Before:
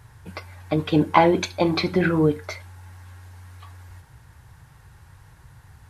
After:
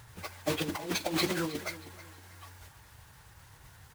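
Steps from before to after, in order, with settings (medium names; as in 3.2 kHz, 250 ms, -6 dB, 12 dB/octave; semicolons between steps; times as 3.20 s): block-companded coder 3-bit; plain phase-vocoder stretch 0.67×; compressor with a negative ratio -25 dBFS, ratio -0.5; bass shelf 320 Hz -5.5 dB; feedback delay 316 ms, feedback 33%, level -16 dB; trim -3.5 dB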